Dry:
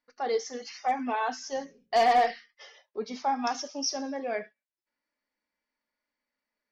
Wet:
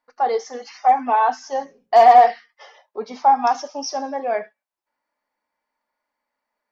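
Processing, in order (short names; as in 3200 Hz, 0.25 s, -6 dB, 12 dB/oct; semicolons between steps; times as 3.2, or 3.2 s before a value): bell 860 Hz +14 dB 1.5 oct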